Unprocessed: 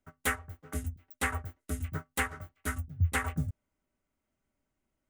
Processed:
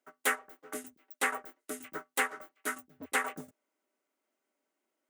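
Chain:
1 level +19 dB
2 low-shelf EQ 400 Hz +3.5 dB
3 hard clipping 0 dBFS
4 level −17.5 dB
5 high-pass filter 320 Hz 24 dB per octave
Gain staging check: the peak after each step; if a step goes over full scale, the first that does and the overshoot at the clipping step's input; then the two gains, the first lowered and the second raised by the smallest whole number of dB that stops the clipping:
+3.5, +4.5, 0.0, −17.5, −14.0 dBFS
step 1, 4.5 dB
step 1 +14 dB, step 4 −12.5 dB

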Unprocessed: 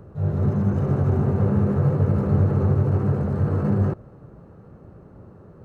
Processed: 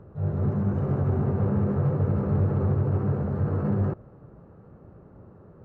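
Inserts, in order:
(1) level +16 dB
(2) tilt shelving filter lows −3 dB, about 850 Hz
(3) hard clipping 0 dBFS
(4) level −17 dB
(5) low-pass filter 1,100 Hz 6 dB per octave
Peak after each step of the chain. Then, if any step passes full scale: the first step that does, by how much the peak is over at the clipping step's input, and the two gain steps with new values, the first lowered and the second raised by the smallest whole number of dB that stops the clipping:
+7.0, +4.5, 0.0, −17.0, −17.0 dBFS
step 1, 4.5 dB
step 1 +11 dB, step 4 −12 dB

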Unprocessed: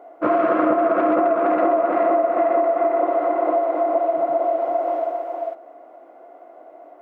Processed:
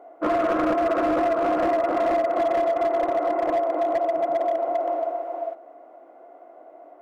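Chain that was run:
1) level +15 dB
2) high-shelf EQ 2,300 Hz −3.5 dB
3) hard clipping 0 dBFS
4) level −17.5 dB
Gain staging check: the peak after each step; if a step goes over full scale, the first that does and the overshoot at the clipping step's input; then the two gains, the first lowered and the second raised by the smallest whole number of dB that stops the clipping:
+8.5, +8.0, 0.0, −17.5 dBFS
step 1, 8.0 dB
step 1 +7 dB, step 4 −9.5 dB

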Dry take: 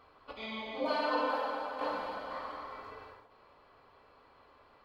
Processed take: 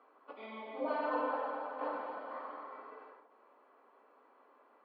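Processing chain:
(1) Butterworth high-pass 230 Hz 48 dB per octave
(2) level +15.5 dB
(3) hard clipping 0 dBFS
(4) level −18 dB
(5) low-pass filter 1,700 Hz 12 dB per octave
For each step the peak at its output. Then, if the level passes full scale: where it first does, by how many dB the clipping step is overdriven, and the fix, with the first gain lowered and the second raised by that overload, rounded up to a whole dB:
−20.5, −5.0, −5.0, −23.0, −23.5 dBFS
no step passes full scale

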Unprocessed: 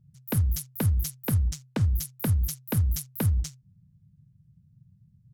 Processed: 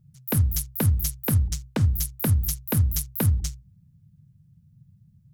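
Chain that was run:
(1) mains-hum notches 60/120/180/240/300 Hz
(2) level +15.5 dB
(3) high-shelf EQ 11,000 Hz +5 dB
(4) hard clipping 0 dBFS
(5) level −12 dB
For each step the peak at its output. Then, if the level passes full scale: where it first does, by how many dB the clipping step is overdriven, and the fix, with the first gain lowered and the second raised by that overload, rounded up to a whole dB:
−14.5, +1.0, +3.0, 0.0, −12.0 dBFS
step 2, 3.0 dB
step 2 +12.5 dB, step 5 −9 dB

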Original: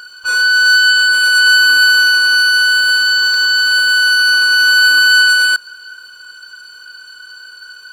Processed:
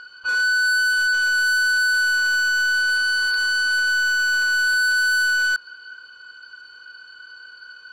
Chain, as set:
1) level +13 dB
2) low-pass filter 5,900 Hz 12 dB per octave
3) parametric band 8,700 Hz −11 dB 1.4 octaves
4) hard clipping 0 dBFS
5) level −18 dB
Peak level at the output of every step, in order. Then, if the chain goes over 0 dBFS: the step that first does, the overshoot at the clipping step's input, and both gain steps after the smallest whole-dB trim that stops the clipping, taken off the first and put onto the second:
+10.5, +10.5, +9.0, 0.0, −18.0 dBFS
step 1, 9.0 dB
step 1 +4 dB, step 5 −9 dB

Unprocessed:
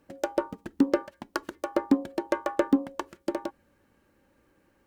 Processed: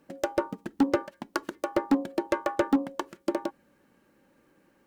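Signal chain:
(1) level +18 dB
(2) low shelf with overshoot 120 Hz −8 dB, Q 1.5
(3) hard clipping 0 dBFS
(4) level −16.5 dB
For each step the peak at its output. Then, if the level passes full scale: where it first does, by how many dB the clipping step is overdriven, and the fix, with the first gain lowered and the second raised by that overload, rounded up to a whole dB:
+8.0, +10.0, 0.0, −16.5 dBFS
step 1, 10.0 dB
step 1 +8 dB, step 4 −6.5 dB

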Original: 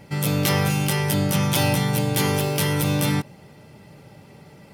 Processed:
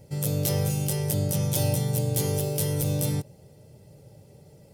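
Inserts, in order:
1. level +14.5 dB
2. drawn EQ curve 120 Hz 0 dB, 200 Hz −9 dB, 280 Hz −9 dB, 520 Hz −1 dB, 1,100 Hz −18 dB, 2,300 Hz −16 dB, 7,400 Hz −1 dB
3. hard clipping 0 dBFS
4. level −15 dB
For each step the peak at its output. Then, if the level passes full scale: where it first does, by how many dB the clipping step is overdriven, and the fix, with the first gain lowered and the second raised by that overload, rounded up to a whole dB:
+6.5, +6.5, 0.0, −15.0 dBFS
step 1, 6.5 dB
step 1 +7.5 dB, step 4 −8 dB

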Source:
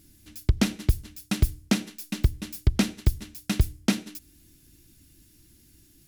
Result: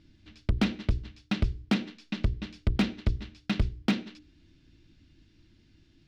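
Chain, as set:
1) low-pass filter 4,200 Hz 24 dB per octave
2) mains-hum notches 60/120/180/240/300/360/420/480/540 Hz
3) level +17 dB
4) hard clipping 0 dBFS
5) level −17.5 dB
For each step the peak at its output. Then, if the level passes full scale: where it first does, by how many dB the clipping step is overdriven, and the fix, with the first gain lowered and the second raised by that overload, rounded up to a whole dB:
−8.5, −9.5, +7.5, 0.0, −17.5 dBFS
step 3, 7.5 dB
step 3 +9 dB, step 5 −9.5 dB

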